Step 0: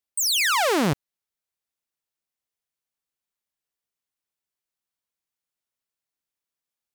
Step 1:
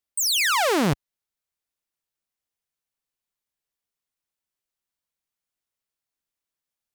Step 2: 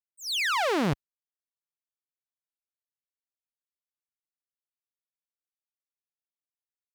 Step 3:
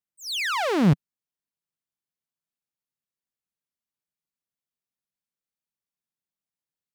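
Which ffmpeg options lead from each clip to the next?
ffmpeg -i in.wav -af "lowshelf=frequency=70:gain=6" out.wav
ffmpeg -i in.wav -filter_complex "[0:a]acrossover=split=5000[link_01][link_02];[link_02]acompressor=threshold=-36dB:ratio=4:attack=1:release=60[link_03];[link_01][link_03]amix=inputs=2:normalize=0,agate=range=-33dB:threshold=-26dB:ratio=3:detection=peak,volume=-4.5dB" out.wav
ffmpeg -i in.wav -af "equalizer=frequency=170:width=1.1:gain=11.5" out.wav

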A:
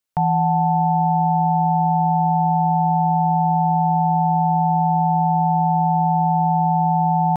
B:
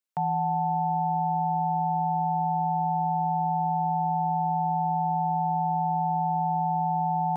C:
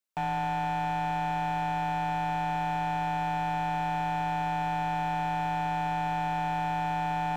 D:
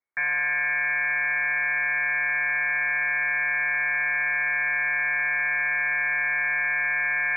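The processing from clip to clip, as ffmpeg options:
ffmpeg -i in.wav -af "highpass=180,volume=-7.5dB" out.wav
ffmpeg -i in.wav -af "asoftclip=type=hard:threshold=-27.5dB" out.wav
ffmpeg -i in.wav -af "equalizer=frequency=300:width_type=o:width=0.34:gain=14.5,lowpass=frequency=2100:width_type=q:width=0.5098,lowpass=frequency=2100:width_type=q:width=0.6013,lowpass=frequency=2100:width_type=q:width=0.9,lowpass=frequency=2100:width_type=q:width=2.563,afreqshift=-2500,volume=3.5dB" out.wav

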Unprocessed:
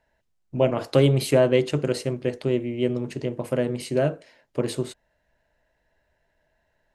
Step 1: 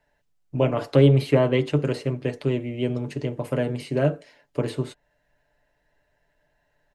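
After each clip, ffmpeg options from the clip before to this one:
ffmpeg -i in.wav -filter_complex "[0:a]aecho=1:1:6.9:0.5,acrossover=split=460|3500[link_01][link_02][link_03];[link_03]acompressor=threshold=-48dB:ratio=6[link_04];[link_01][link_02][link_04]amix=inputs=3:normalize=0" out.wav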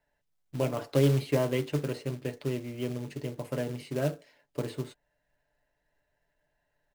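ffmpeg -i in.wav -af "acrusher=bits=4:mode=log:mix=0:aa=0.000001,volume=-8dB" out.wav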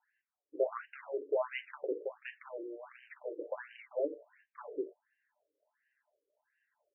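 ffmpeg -i in.wav -af "alimiter=limit=-21.5dB:level=0:latency=1:release=137,afftfilt=real='re*between(b*sr/1024,390*pow(2200/390,0.5+0.5*sin(2*PI*1.4*pts/sr))/1.41,390*pow(2200/390,0.5+0.5*sin(2*PI*1.4*pts/sr))*1.41)':imag='im*between(b*sr/1024,390*pow(2200/390,0.5+0.5*sin(2*PI*1.4*pts/sr))/1.41,390*pow(2200/390,0.5+0.5*sin(2*PI*1.4*pts/sr))*1.41)':win_size=1024:overlap=0.75,volume=3dB" out.wav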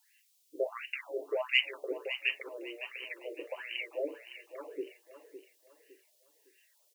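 ffmpeg -i in.wav -af "aexciter=amount=12.2:drive=7.5:freq=2300,aecho=1:1:559|1118|1677|2236:0.266|0.0905|0.0308|0.0105,volume=-1.5dB" out.wav

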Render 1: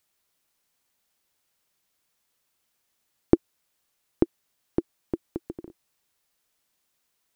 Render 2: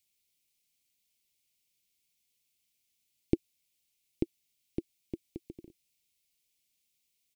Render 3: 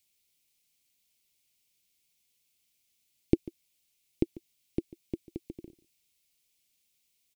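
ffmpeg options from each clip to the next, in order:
ffmpeg -i in.wav -af "firequalizer=gain_entry='entry(120,0);entry(1400,-26);entry(2200,3)':delay=0.05:min_phase=1,volume=-5.5dB" out.wav
ffmpeg -i in.wav -af "aecho=1:1:144:0.112,volume=3.5dB" out.wav

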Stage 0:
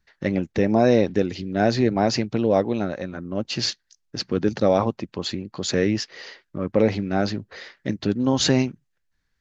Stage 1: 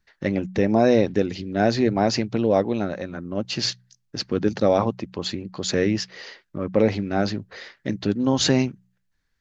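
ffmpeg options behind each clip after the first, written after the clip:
ffmpeg -i in.wav -af "bandreject=frequency=61.81:width_type=h:width=4,bandreject=frequency=123.62:width_type=h:width=4,bandreject=frequency=185.43:width_type=h:width=4" out.wav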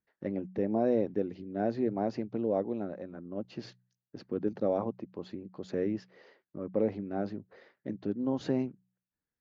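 ffmpeg -i in.wav -af "bandpass=frequency=360:width_type=q:width=0.65:csg=0,volume=-9dB" out.wav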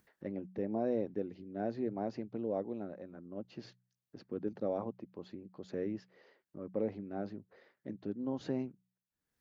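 ffmpeg -i in.wav -af "acompressor=mode=upward:threshold=-52dB:ratio=2.5,volume=-6dB" out.wav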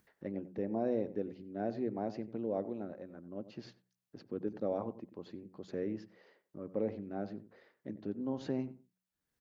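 ffmpeg -i in.wav -filter_complex "[0:a]asplit=2[link_01][link_02];[link_02]adelay=92,lowpass=frequency=1400:poles=1,volume=-13.5dB,asplit=2[link_03][link_04];[link_04]adelay=92,lowpass=frequency=1400:poles=1,volume=0.18[link_05];[link_01][link_03][link_05]amix=inputs=3:normalize=0" out.wav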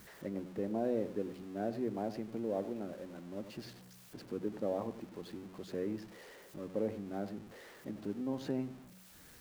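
ffmpeg -i in.wav -af "aeval=exprs='val(0)+0.5*0.00355*sgn(val(0))':channel_layout=same,volume=-1dB" out.wav

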